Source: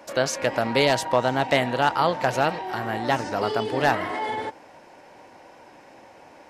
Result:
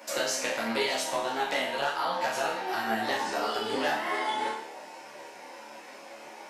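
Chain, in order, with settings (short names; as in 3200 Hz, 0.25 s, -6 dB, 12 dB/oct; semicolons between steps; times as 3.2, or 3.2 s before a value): HPF 170 Hz 12 dB/oct; tilt +2 dB/oct; compressor 6:1, threshold -29 dBFS, peak gain reduction 13.5 dB; on a send: flutter echo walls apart 4.6 m, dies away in 0.65 s; on the sum: ensemble effect; gain +3 dB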